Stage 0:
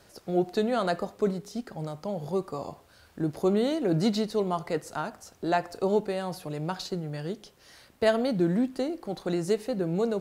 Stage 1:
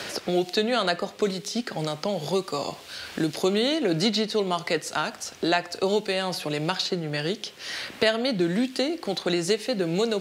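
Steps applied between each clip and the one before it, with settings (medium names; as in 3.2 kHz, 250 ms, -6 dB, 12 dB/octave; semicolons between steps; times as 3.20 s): frequency weighting D; three bands compressed up and down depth 70%; trim +2.5 dB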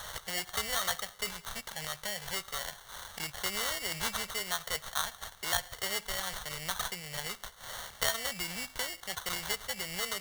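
sample-rate reducer 2.5 kHz, jitter 0%; amplifier tone stack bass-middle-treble 10-0-10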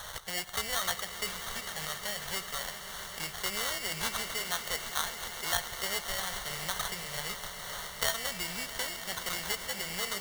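echo with a slow build-up 133 ms, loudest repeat 5, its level -15 dB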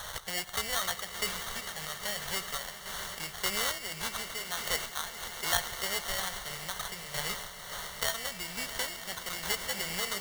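random-step tremolo; trim +3 dB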